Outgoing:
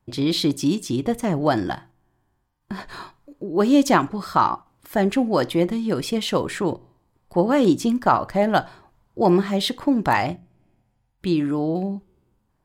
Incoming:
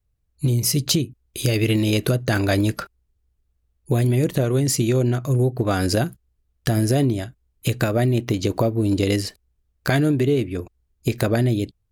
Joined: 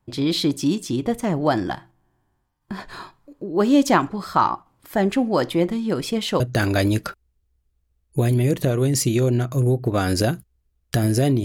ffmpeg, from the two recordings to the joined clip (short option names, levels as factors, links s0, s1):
-filter_complex "[0:a]apad=whole_dur=11.44,atrim=end=11.44,atrim=end=6.402[s0];[1:a]atrim=start=2.128:end=7.17[s1];[s0][s1]acrossfade=d=0.004:c1=hsin:c2=hsin"